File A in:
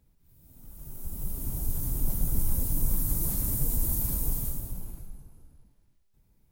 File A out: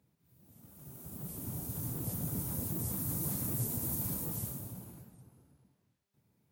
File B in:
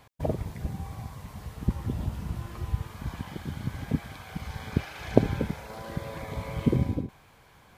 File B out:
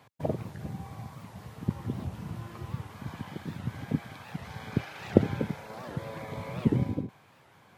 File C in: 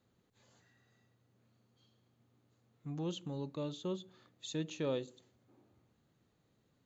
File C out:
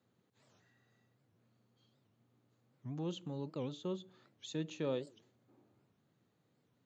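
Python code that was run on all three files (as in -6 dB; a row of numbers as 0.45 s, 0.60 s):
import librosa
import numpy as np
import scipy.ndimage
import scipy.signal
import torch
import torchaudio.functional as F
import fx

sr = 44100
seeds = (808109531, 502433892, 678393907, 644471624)

y = scipy.signal.sosfilt(scipy.signal.butter(4, 100.0, 'highpass', fs=sr, output='sos'), x)
y = fx.high_shelf(y, sr, hz=4500.0, db=-5.0)
y = fx.record_warp(y, sr, rpm=78.0, depth_cents=250.0)
y = y * librosa.db_to_amplitude(-1.0)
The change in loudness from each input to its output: -6.0 LU, -1.5 LU, -1.0 LU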